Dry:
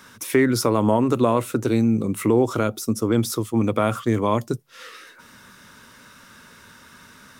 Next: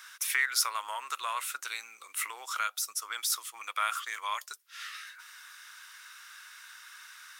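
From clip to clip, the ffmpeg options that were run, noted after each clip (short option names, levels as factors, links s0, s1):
-af "highpass=f=1300:w=0.5412,highpass=f=1300:w=1.3066"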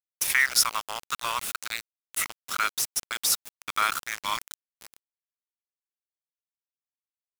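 -af "lowshelf=f=400:g=-7.5,aeval=exprs='val(0)*gte(abs(val(0)),0.0237)':c=same,volume=2.11"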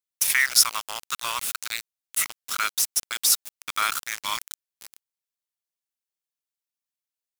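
-af "highshelf=f=2300:g=7.5,volume=0.75"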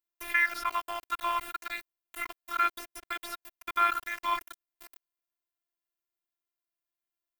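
-filter_complex "[0:a]afftfilt=real='hypot(re,im)*cos(PI*b)':imag='0':win_size=512:overlap=0.75,acrossover=split=2700[s0][s1];[s1]acompressor=threshold=0.0126:ratio=4:attack=1:release=60[s2];[s0][s2]amix=inputs=2:normalize=0,equalizer=f=6600:t=o:w=2.1:g=-12.5,volume=1.88"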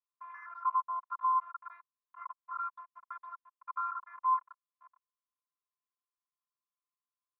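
-af "asoftclip=type=tanh:threshold=0.0447,asuperpass=centerf=1100:order=4:qfactor=4.2,volume=2"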